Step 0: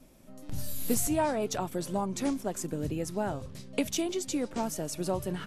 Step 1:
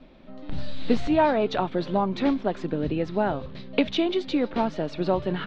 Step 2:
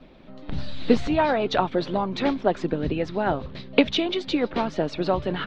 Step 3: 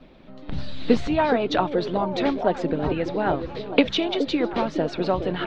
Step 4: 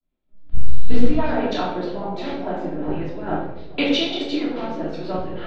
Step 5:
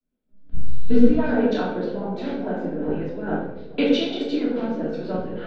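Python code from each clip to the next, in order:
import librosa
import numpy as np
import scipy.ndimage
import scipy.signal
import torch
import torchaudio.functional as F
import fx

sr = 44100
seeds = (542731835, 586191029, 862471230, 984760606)

y1 = scipy.signal.sosfilt(scipy.signal.cheby1(4, 1.0, 4000.0, 'lowpass', fs=sr, output='sos'), x)
y1 = fx.peak_eq(y1, sr, hz=100.0, db=-15.0, octaves=0.52)
y1 = y1 * librosa.db_to_amplitude(8.5)
y2 = fx.hpss(y1, sr, part='percussive', gain_db=8)
y2 = y2 * librosa.db_to_amplitude(-2.5)
y3 = fx.echo_stepped(y2, sr, ms=418, hz=370.0, octaves=0.7, feedback_pct=70, wet_db=-5.0)
y4 = fx.room_shoebox(y3, sr, seeds[0], volume_m3=620.0, walls='mixed', distance_m=3.0)
y4 = fx.band_widen(y4, sr, depth_pct=100)
y4 = y4 * librosa.db_to_amplitude(-10.0)
y5 = fx.small_body(y4, sr, hz=(230.0, 450.0, 1500.0), ring_ms=40, db=13)
y5 = y5 * librosa.db_to_amplitude(-6.0)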